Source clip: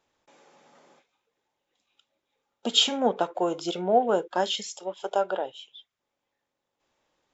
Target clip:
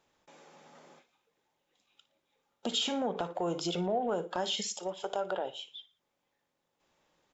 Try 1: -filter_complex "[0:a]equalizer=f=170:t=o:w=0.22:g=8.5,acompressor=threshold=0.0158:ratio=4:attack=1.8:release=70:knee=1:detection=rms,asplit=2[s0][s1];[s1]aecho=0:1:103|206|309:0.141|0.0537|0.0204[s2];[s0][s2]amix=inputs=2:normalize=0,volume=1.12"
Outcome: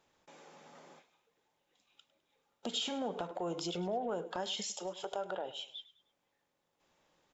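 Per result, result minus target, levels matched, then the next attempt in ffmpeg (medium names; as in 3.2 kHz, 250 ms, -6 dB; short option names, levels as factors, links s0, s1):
echo 45 ms late; compression: peak gain reduction +5 dB
-filter_complex "[0:a]equalizer=f=170:t=o:w=0.22:g=8.5,acompressor=threshold=0.0158:ratio=4:attack=1.8:release=70:knee=1:detection=rms,asplit=2[s0][s1];[s1]aecho=0:1:58|116|174:0.141|0.0537|0.0204[s2];[s0][s2]amix=inputs=2:normalize=0,volume=1.12"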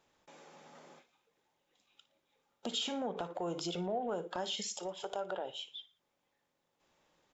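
compression: peak gain reduction +5 dB
-filter_complex "[0:a]equalizer=f=170:t=o:w=0.22:g=8.5,acompressor=threshold=0.0335:ratio=4:attack=1.8:release=70:knee=1:detection=rms,asplit=2[s0][s1];[s1]aecho=0:1:58|116|174:0.141|0.0537|0.0204[s2];[s0][s2]amix=inputs=2:normalize=0,volume=1.12"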